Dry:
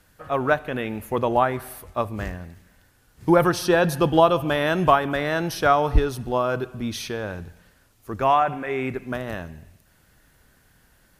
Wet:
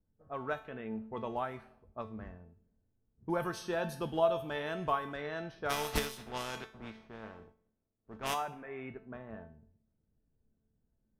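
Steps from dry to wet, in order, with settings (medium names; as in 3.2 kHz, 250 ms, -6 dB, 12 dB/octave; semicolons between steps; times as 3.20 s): 5.69–8.33 s: spectral contrast reduction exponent 0.4; level-controlled noise filter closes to 350 Hz, open at -16.5 dBFS; feedback comb 220 Hz, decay 0.42 s, harmonics all, mix 80%; trim -4.5 dB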